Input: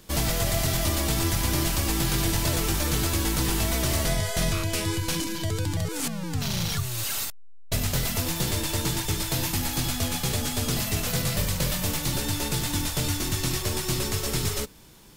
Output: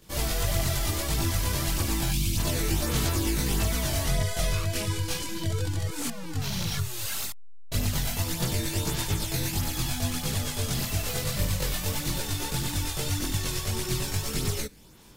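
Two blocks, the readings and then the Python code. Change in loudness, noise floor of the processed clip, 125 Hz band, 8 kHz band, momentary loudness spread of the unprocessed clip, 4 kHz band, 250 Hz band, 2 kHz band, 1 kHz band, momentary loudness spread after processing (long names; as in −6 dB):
−2.5 dB, −36 dBFS, −1.0 dB, −3.0 dB, 4 LU, −3.0 dB, −3.0 dB, −3.0 dB, −3.0 dB, 4 LU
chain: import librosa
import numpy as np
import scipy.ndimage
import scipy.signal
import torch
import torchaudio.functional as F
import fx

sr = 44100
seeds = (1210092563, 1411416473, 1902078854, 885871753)

y = fx.spec_box(x, sr, start_s=2.11, length_s=0.26, low_hz=340.0, high_hz=2100.0, gain_db=-15)
y = fx.chorus_voices(y, sr, voices=2, hz=0.83, base_ms=21, depth_ms=1.4, mix_pct=60)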